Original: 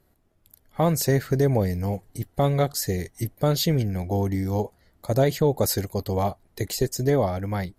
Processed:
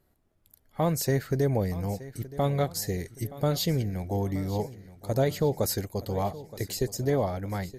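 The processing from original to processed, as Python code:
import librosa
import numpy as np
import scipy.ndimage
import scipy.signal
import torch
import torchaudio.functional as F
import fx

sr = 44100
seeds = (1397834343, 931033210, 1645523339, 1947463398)

y = fx.echo_feedback(x, sr, ms=922, feedback_pct=49, wet_db=-17.0)
y = y * librosa.db_to_amplitude(-4.5)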